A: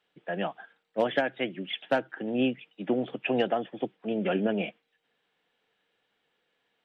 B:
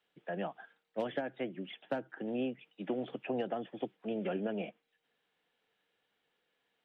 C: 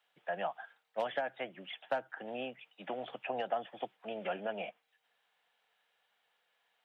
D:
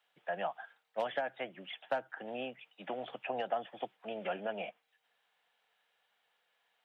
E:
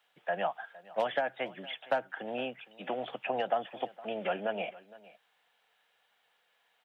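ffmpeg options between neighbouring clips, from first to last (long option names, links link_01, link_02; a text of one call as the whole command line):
ffmpeg -i in.wav -filter_complex "[0:a]acrossover=split=370|1400[link_01][link_02][link_03];[link_01]acompressor=threshold=-33dB:ratio=4[link_04];[link_02]acompressor=threshold=-31dB:ratio=4[link_05];[link_03]acompressor=threshold=-46dB:ratio=4[link_06];[link_04][link_05][link_06]amix=inputs=3:normalize=0,volume=-4.5dB" out.wav
ffmpeg -i in.wav -af "lowshelf=frequency=500:width_type=q:width=1.5:gain=-11.5,volume=3dB" out.wav
ffmpeg -i in.wav -af anull out.wav
ffmpeg -i in.wav -af "aecho=1:1:462:0.1,volume=4.5dB" out.wav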